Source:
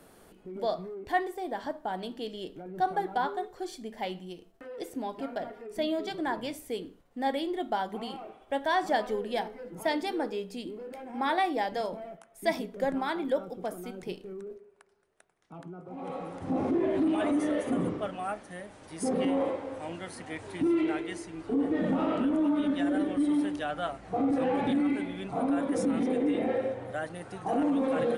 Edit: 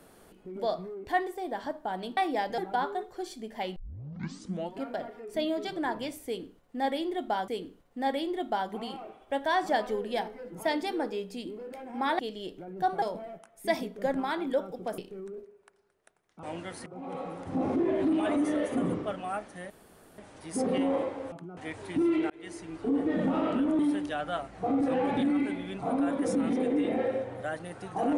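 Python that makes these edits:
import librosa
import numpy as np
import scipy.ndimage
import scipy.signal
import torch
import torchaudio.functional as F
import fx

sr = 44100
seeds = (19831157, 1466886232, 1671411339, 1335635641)

y = fx.edit(x, sr, fx.swap(start_s=2.17, length_s=0.83, other_s=11.39, other_length_s=0.41),
    fx.tape_start(start_s=4.18, length_s=1.06),
    fx.repeat(start_s=6.68, length_s=1.22, count=2),
    fx.cut(start_s=13.76, length_s=0.35),
    fx.swap(start_s=15.56, length_s=0.25, other_s=19.79, other_length_s=0.43),
    fx.insert_room_tone(at_s=18.65, length_s=0.48),
    fx.fade_in_span(start_s=20.95, length_s=0.31),
    fx.cut(start_s=22.44, length_s=0.85), tone=tone)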